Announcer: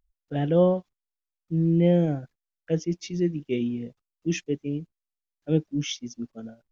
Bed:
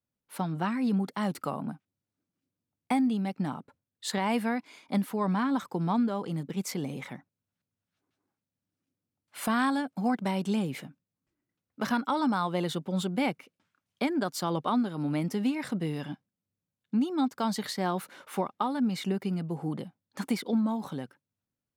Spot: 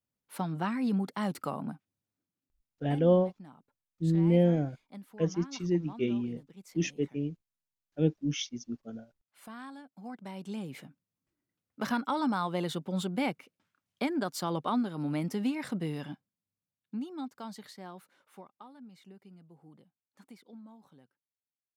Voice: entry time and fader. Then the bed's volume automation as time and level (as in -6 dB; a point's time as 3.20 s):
2.50 s, -3.5 dB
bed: 2.08 s -2 dB
2.97 s -18.5 dB
9.86 s -18.5 dB
11.12 s -2.5 dB
15.94 s -2.5 dB
18.85 s -23 dB